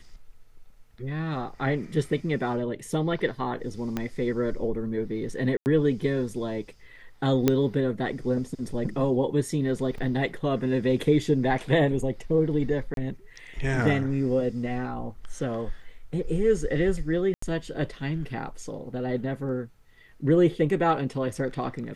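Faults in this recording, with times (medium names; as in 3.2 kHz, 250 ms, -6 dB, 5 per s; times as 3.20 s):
3.97 s: pop -15 dBFS
5.57–5.66 s: dropout 89 ms
7.48 s: pop -7 dBFS
9.98 s: dropout 2.9 ms
12.94–12.97 s: dropout 32 ms
17.34–17.42 s: dropout 84 ms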